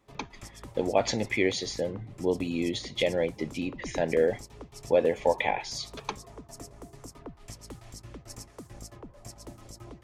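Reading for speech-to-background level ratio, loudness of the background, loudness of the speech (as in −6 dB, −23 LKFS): 17.5 dB, −46.5 LKFS, −29.0 LKFS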